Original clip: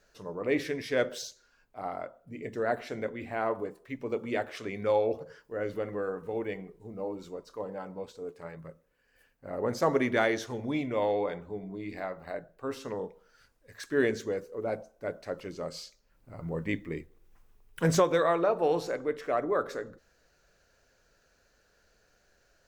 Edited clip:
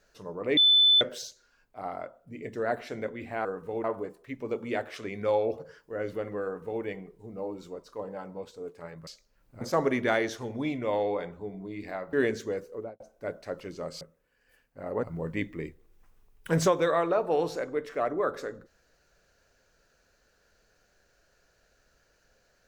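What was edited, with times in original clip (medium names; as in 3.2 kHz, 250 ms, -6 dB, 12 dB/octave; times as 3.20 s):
0.57–1.01 s: bleep 3.51 kHz -16.5 dBFS
6.05–6.44 s: copy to 3.45 s
8.68–9.70 s: swap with 15.81–16.35 s
12.22–13.93 s: delete
14.53–14.80 s: studio fade out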